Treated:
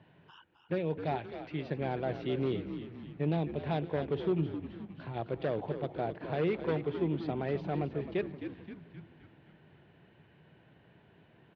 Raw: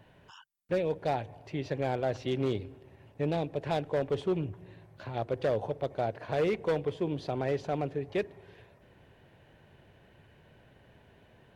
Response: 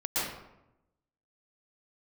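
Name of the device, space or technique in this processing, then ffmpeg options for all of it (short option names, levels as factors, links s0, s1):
frequency-shifting delay pedal into a guitar cabinet: -filter_complex "[0:a]asplit=8[s0][s1][s2][s3][s4][s5][s6][s7];[s1]adelay=262,afreqshift=-79,volume=0.335[s8];[s2]adelay=524,afreqshift=-158,volume=0.191[s9];[s3]adelay=786,afreqshift=-237,volume=0.108[s10];[s4]adelay=1048,afreqshift=-316,volume=0.0624[s11];[s5]adelay=1310,afreqshift=-395,volume=0.0355[s12];[s6]adelay=1572,afreqshift=-474,volume=0.0202[s13];[s7]adelay=1834,afreqshift=-553,volume=0.0115[s14];[s0][s8][s9][s10][s11][s12][s13][s14]amix=inputs=8:normalize=0,highpass=100,equalizer=f=160:t=q:w=4:g=7,equalizer=f=330:t=q:w=4:g=4,equalizer=f=550:t=q:w=4:g=-4,lowpass=f=3900:w=0.5412,lowpass=f=3900:w=1.3066,asettb=1/sr,asplit=3[s15][s16][s17];[s15]atrim=end=1.154[s18];[s16]atrim=start=1.15:end=1.63,asetpts=PTS-STARTPTS,afade=t=in:d=0.004:c=qsin,afade=t=out:st=0.476:d=0.004:c=qsin,tiltshelf=f=880:g=-3.5[s19];[s17]atrim=start=1.626[s20];[s18][s19]acrossfade=d=0.004:c1=hsin:c2=qsin[s21];[s21][s20]acrossfade=d=0.004:c1=qsin:c2=hsin,volume=0.708"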